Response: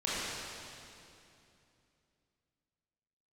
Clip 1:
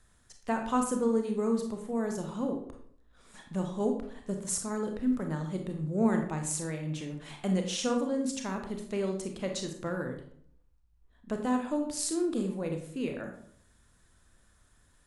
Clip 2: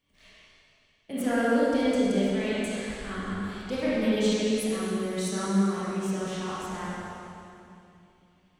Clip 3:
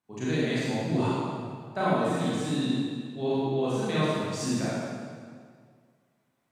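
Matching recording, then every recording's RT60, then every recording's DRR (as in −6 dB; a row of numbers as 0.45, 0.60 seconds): 2; 0.60, 2.7, 2.0 seconds; 3.5, −10.0, −10.0 decibels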